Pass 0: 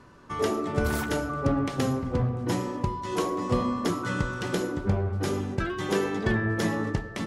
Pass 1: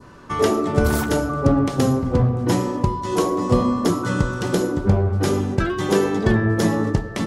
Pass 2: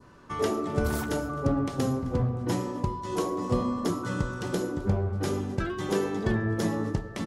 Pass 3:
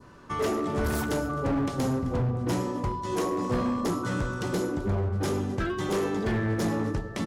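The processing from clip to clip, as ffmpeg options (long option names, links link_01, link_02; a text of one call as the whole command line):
ffmpeg -i in.wav -af "adynamicequalizer=threshold=0.00447:dfrequency=2200:dqfactor=0.81:tfrequency=2200:tqfactor=0.81:attack=5:release=100:ratio=0.375:range=3.5:mode=cutabove:tftype=bell,volume=8.5dB" out.wav
ffmpeg -i in.wav -af "aecho=1:1:261:0.0794,volume=-9dB" out.wav
ffmpeg -i in.wav -af "asoftclip=type=hard:threshold=-25.5dB,volume=2.5dB" out.wav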